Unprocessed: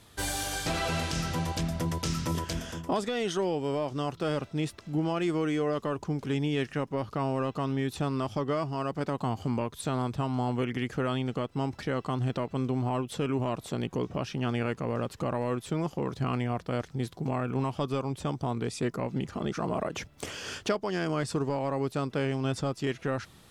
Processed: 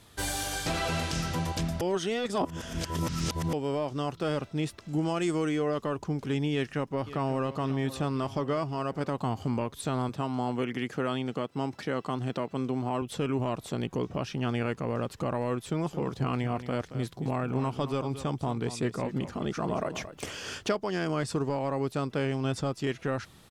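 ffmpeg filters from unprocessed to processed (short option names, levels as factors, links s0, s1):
-filter_complex "[0:a]asettb=1/sr,asplit=3[s0][s1][s2];[s0]atrim=end=4.884[s3];[s1]atrim=start=4.88:end=5.49,asetpts=PTS-STARTPTS,afade=t=in:d=0.004:c=qsin,afade=t=out:st=0.606:d=0.004:c=qsin,equalizer=f=7800:w=1.3:g=10[s4];[s2]atrim=start=5.486[s5];[s3][s4]acrossfade=d=0.004:c1=hsin:c2=qsin[s6];[s6][s5]acrossfade=d=0.004:c1=qsin:c2=hsin,asplit=2[s7][s8];[s8]afade=t=in:st=6.52:d=0.01,afade=t=out:st=7.54:d=0.01,aecho=0:1:540|1080|1620|2160|2700|3240:0.199526|0.119716|0.0718294|0.0430977|0.0258586|0.0155152[s9];[s7][s9]amix=inputs=2:normalize=0,asettb=1/sr,asplit=3[s10][s11][s12];[s10]atrim=end=10.094[s13];[s11]atrim=start=10.09:end=13.02,asetpts=PTS-STARTPTS,afade=t=in:d=0.004:c=qsin,afade=t=out:st=2.926:d=0.004:c=qsin,highpass=150[s14];[s12]atrim=start=13.016[s15];[s13][s14]acrossfade=d=0.004:c1=hsin:c2=qsin[s16];[s16][s15]acrossfade=d=0.004:c1=qsin:c2=hsin,asettb=1/sr,asplit=3[s17][s18][s19];[s17]atrim=end=15.644[s20];[s18]atrim=start=15.64:end=20.4,asetpts=PTS-STARTPTS,afade=t=in:d=0.004:c=qsin,afade=t=out:st=4.756:d=0.004:c=qsin,aecho=1:1:225:0.251,atrim=end_sample=209916[s21];[s19]atrim=start=20.396[s22];[s20][s21]acrossfade=d=0.004:c1=hsin:c2=qsin[s23];[s23][s22]acrossfade=d=0.004:c1=qsin:c2=hsin,asplit=3[s24][s25][s26];[s24]atrim=end=1.812[s27];[s25]atrim=start=1.808:end=3.532,asetpts=PTS-STARTPTS,areverse[s28];[s26]atrim=start=3.528[s29];[s27][s28]acrossfade=d=0.004:c1=hsin:c2=hsin[s30];[s30][s29]acrossfade=d=0.004:c1=hsin:c2=hsin"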